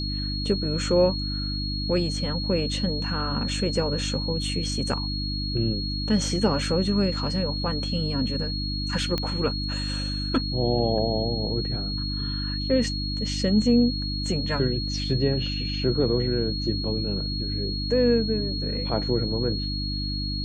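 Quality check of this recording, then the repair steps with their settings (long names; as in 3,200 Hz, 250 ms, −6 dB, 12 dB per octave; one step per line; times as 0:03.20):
mains hum 50 Hz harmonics 6 −30 dBFS
whistle 4,300 Hz −31 dBFS
0:09.18: click −13 dBFS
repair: click removal
notch filter 4,300 Hz, Q 30
hum removal 50 Hz, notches 6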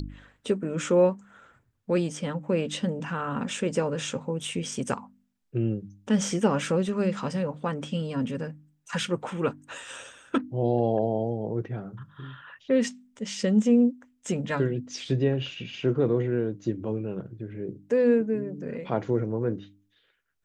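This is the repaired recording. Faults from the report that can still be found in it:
none of them is left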